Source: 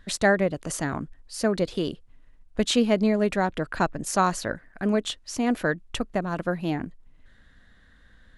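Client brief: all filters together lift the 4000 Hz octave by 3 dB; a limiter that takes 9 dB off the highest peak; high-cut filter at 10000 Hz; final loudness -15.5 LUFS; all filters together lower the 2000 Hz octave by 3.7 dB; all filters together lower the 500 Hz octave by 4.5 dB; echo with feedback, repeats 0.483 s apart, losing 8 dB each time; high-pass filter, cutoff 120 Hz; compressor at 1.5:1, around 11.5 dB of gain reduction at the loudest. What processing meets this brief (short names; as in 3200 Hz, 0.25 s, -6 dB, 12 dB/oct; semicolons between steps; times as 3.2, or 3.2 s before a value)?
HPF 120 Hz; LPF 10000 Hz; bell 500 Hz -5.5 dB; bell 2000 Hz -5.5 dB; bell 4000 Hz +5.5 dB; compressor 1.5:1, threshold -52 dBFS; limiter -30 dBFS; feedback echo 0.483 s, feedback 40%, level -8 dB; gain +25 dB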